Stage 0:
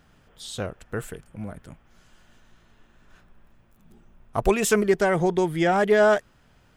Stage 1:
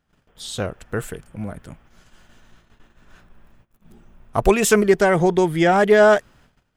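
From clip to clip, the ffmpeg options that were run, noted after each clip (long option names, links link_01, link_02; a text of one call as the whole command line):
ffmpeg -i in.wav -af "agate=range=-19dB:threshold=-55dB:ratio=16:detection=peak,volume=5dB" out.wav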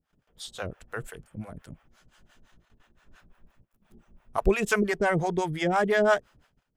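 ffmpeg -i in.wav -filter_complex "[0:a]acrossover=split=530[link_01][link_02];[link_01]aeval=exprs='val(0)*(1-1/2+1/2*cos(2*PI*5.8*n/s))':channel_layout=same[link_03];[link_02]aeval=exprs='val(0)*(1-1/2-1/2*cos(2*PI*5.8*n/s))':channel_layout=same[link_04];[link_03][link_04]amix=inputs=2:normalize=0,volume=-3.5dB" out.wav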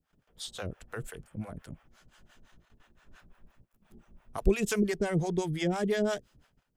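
ffmpeg -i in.wav -filter_complex "[0:a]acrossover=split=430|3000[link_01][link_02][link_03];[link_02]acompressor=threshold=-42dB:ratio=3[link_04];[link_01][link_04][link_03]amix=inputs=3:normalize=0" out.wav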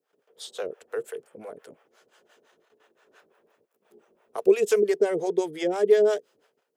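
ffmpeg -i in.wav -af "highpass=frequency=440:width_type=q:width=4.9" out.wav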